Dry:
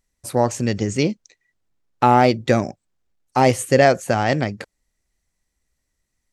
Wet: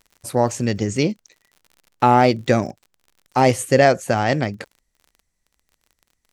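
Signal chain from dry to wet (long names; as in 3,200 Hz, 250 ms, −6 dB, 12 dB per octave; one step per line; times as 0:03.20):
surface crackle 62 per second −38 dBFS, from 0:03.51 25 per second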